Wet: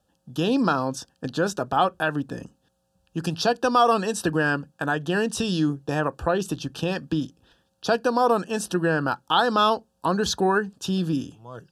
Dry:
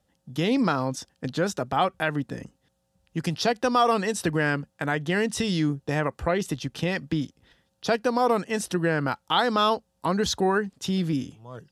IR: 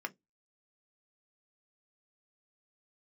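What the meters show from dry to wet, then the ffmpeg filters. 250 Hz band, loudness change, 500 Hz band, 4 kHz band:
+1.0 dB, +1.5 dB, +1.5 dB, +1.0 dB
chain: -filter_complex "[0:a]asuperstop=centerf=2100:order=8:qfactor=3.1,asplit=2[link_01][link_02];[1:a]atrim=start_sample=2205,asetrate=38367,aresample=44100[link_03];[link_02][link_03]afir=irnorm=-1:irlink=0,volume=-11dB[link_04];[link_01][link_04]amix=inputs=2:normalize=0"

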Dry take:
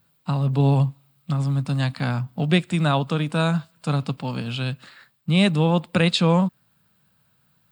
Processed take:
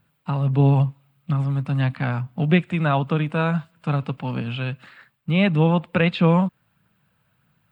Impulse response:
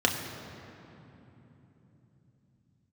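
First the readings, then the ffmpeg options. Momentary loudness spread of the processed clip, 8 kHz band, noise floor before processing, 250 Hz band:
10 LU, below −15 dB, −65 dBFS, +0.5 dB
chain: -filter_complex "[0:a]acrossover=split=3900[link_01][link_02];[link_02]acompressor=threshold=-50dB:ratio=4:attack=1:release=60[link_03];[link_01][link_03]amix=inputs=2:normalize=0,aphaser=in_gain=1:out_gain=1:delay=2.4:decay=0.23:speed=1.6:type=triangular,highshelf=frequency=3400:width_type=q:width=1.5:gain=-7"

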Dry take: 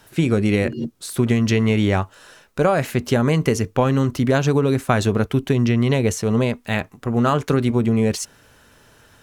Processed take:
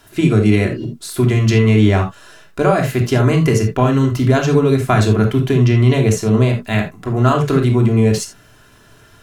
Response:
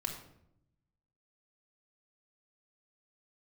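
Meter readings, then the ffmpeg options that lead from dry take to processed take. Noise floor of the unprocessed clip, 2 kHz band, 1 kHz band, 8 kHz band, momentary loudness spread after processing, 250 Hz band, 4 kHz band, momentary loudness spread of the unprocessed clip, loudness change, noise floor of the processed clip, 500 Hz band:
−53 dBFS, +3.0 dB, +3.5 dB, +2.5 dB, 8 LU, +4.0 dB, +3.0 dB, 7 LU, +5.0 dB, −47 dBFS, +4.0 dB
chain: -filter_complex "[1:a]atrim=start_sample=2205,atrim=end_sample=3969[link_01];[0:a][link_01]afir=irnorm=-1:irlink=0,volume=2.5dB"

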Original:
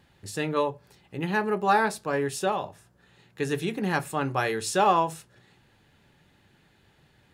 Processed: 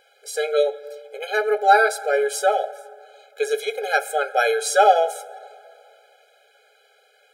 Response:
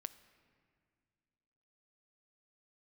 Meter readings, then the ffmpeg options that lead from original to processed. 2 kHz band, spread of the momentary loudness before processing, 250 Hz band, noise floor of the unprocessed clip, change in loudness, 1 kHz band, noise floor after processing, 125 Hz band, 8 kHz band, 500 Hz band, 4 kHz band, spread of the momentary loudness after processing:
+8.0 dB, 12 LU, below −15 dB, −63 dBFS, +6.5 dB, +6.5 dB, −59 dBFS, below −40 dB, +7.0 dB, +8.5 dB, +6.0 dB, 17 LU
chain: -filter_complex "[0:a]asplit=2[link_01][link_02];[1:a]atrim=start_sample=2205,asetrate=34398,aresample=44100[link_03];[link_02][link_03]afir=irnorm=-1:irlink=0,volume=9dB[link_04];[link_01][link_04]amix=inputs=2:normalize=0,afftfilt=real='re*eq(mod(floor(b*sr/1024/420),2),1)':imag='im*eq(mod(floor(b*sr/1024/420),2),1)':win_size=1024:overlap=0.75"

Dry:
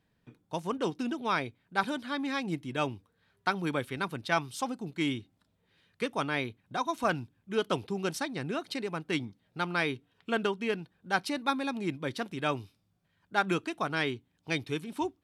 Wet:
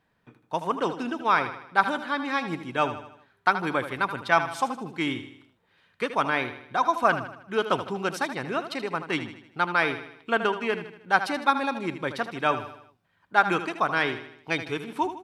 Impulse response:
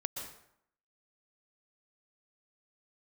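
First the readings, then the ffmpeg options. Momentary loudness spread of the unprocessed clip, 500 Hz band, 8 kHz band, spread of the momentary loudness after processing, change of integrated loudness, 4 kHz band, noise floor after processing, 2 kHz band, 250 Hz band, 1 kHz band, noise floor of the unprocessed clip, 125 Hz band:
6 LU, +5.0 dB, 0.0 dB, 8 LU, +6.0 dB, +2.5 dB, −69 dBFS, +7.5 dB, +1.5 dB, +9.0 dB, −74 dBFS, 0.0 dB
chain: -af "equalizer=frequency=1100:width=0.49:gain=10.5,aecho=1:1:78|156|234|312|390:0.282|0.138|0.0677|0.0332|0.0162,volume=-1.5dB"

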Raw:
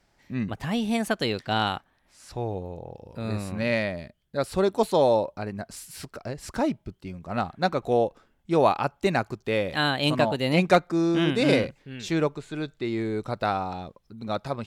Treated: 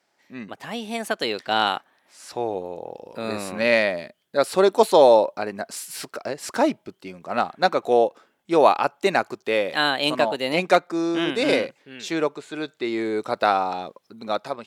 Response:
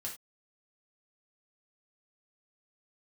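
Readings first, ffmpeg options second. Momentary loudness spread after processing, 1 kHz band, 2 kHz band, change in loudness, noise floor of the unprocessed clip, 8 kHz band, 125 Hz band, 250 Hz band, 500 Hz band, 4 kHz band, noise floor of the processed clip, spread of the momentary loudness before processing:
15 LU, +5.5 dB, +4.5 dB, +3.5 dB, −68 dBFS, +5.5 dB, −9.5 dB, −0.5 dB, +5.0 dB, +4.0 dB, −69 dBFS, 16 LU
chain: -af "highpass=330,dynaudnorm=framelen=940:gausssize=3:maxgain=11.5dB,volume=-1dB"

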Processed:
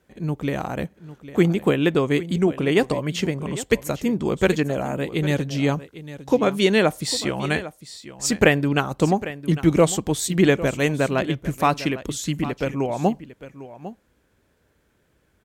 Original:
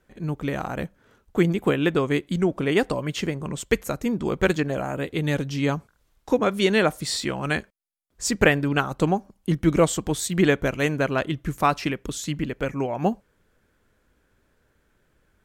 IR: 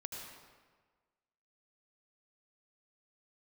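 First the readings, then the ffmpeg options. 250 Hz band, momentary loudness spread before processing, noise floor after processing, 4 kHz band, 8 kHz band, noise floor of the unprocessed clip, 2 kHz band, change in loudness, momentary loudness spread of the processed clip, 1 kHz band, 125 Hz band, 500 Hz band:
+2.5 dB, 9 LU, −65 dBFS, +2.5 dB, +2.5 dB, −67 dBFS, +0.5 dB, +2.0 dB, 14 LU, +1.0 dB, +2.5 dB, +2.5 dB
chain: -filter_complex "[0:a]highpass=54,equalizer=frequency=1400:width=1.9:gain=-4,asplit=2[link_01][link_02];[link_02]aecho=0:1:802:0.178[link_03];[link_01][link_03]amix=inputs=2:normalize=0,volume=2.5dB"

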